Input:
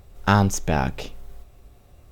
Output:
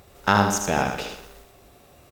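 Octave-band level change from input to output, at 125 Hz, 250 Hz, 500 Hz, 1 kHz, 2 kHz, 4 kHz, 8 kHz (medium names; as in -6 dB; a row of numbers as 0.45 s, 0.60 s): -6.5 dB, -2.0 dB, +1.5 dB, +2.0 dB, +3.0 dB, +3.0 dB, +3.0 dB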